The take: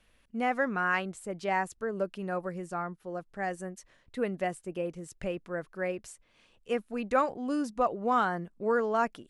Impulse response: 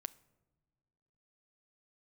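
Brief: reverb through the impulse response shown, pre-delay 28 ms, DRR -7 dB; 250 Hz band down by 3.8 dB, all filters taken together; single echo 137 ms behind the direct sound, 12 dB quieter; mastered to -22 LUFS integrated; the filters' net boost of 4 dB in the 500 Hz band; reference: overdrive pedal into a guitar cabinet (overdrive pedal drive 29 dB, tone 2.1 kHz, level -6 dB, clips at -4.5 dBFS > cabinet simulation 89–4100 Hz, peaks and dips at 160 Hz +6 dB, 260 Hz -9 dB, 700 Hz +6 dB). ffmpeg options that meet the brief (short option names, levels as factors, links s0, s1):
-filter_complex "[0:a]equalizer=f=250:t=o:g=-3.5,equalizer=f=500:t=o:g=4,aecho=1:1:137:0.251,asplit=2[s0][s1];[1:a]atrim=start_sample=2205,adelay=28[s2];[s1][s2]afir=irnorm=-1:irlink=0,volume=3.35[s3];[s0][s3]amix=inputs=2:normalize=0,asplit=2[s4][s5];[s5]highpass=f=720:p=1,volume=28.2,asoftclip=type=tanh:threshold=0.596[s6];[s4][s6]amix=inputs=2:normalize=0,lowpass=f=2100:p=1,volume=0.501,highpass=89,equalizer=f=160:t=q:w=4:g=6,equalizer=f=260:t=q:w=4:g=-9,equalizer=f=700:t=q:w=4:g=6,lowpass=f=4100:w=0.5412,lowpass=f=4100:w=1.3066,volume=0.335"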